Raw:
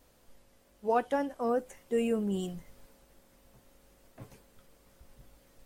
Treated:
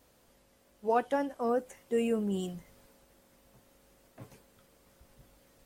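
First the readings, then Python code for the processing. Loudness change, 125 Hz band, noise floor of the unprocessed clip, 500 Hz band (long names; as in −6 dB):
0.0 dB, −0.5 dB, −64 dBFS, 0.0 dB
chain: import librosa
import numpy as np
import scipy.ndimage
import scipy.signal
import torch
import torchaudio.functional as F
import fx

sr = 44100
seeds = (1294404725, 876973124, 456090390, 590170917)

y = fx.highpass(x, sr, hz=64.0, slope=6)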